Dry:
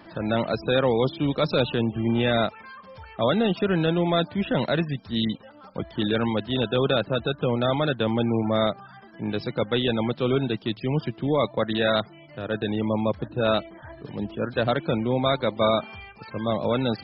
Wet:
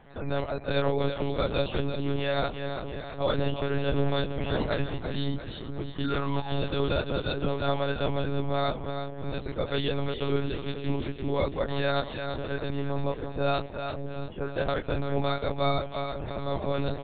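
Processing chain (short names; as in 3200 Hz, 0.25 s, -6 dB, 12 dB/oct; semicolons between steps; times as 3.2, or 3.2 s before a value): doubler 23 ms -3 dB; split-band echo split 470 Hz, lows 0.539 s, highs 0.34 s, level -7 dB; painted sound fall, 6.04–6.6, 700–1500 Hz -30 dBFS; monotone LPC vocoder at 8 kHz 140 Hz; gain -6.5 dB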